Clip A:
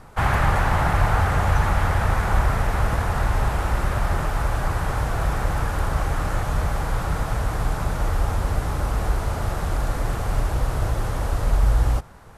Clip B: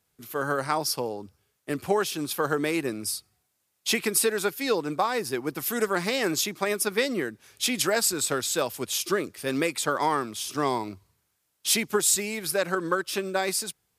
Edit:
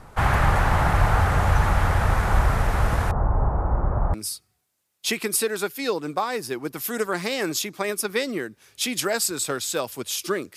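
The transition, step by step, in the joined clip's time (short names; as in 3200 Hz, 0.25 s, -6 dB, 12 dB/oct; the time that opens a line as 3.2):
clip A
3.11–4.14 LPF 1100 Hz 24 dB/oct
4.14 switch to clip B from 2.96 s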